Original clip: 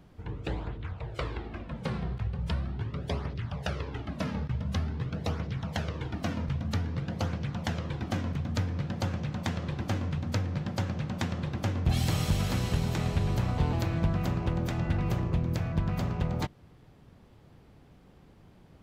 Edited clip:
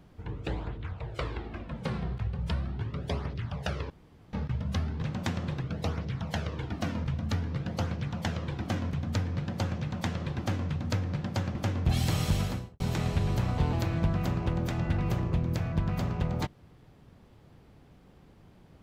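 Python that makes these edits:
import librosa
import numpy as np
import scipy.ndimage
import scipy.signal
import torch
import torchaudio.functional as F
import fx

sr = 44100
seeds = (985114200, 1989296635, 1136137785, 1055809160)

y = fx.studio_fade_out(x, sr, start_s=12.36, length_s=0.44)
y = fx.edit(y, sr, fx.room_tone_fill(start_s=3.9, length_s=0.43),
    fx.move(start_s=10.97, length_s=0.58, to_s=5.02), tone=tone)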